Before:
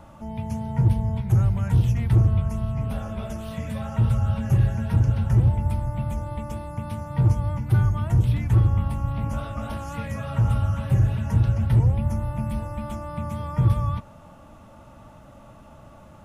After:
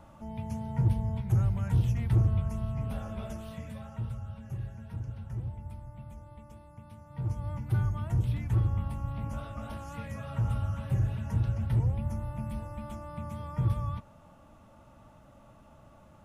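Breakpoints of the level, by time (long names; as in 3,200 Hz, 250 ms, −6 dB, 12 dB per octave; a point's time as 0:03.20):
0:03.31 −6.5 dB
0:04.29 −18 dB
0:07.03 −18 dB
0:07.54 −8.5 dB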